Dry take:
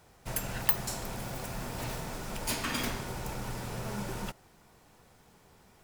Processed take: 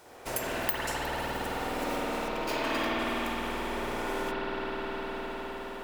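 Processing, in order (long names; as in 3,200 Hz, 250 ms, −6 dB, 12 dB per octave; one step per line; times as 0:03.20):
0:02.28–0:02.99: running median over 5 samples
convolution reverb RT60 5.3 s, pre-delay 51 ms, DRR −9 dB
downward compressor 3 to 1, threshold −35 dBFS, peak gain reduction 12 dB
low shelf with overshoot 220 Hz −11 dB, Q 1.5
level +6 dB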